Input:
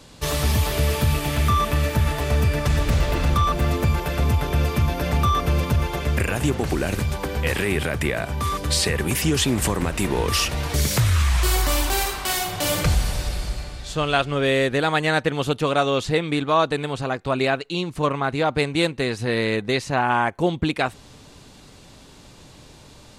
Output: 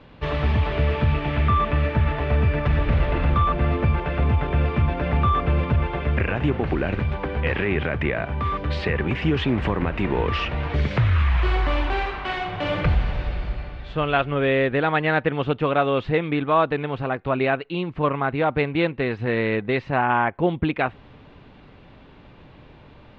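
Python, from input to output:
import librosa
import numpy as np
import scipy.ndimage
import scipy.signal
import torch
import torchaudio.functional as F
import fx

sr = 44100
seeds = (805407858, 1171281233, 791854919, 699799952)

y = scipy.signal.sosfilt(scipy.signal.butter(4, 2800.0, 'lowpass', fs=sr, output='sos'), x)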